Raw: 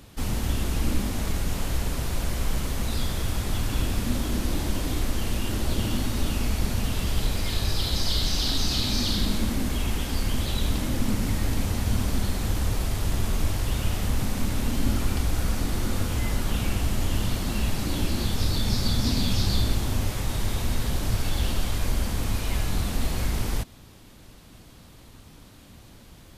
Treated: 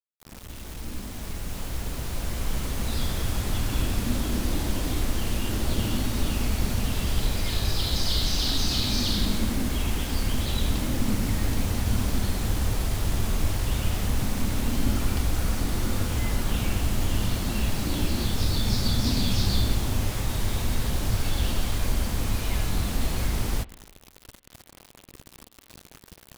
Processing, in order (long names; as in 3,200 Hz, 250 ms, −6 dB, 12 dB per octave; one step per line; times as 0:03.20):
fade in at the beginning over 3.09 s
bit reduction 7 bits
spring reverb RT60 1.5 s, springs 43/56 ms, DRR 19.5 dB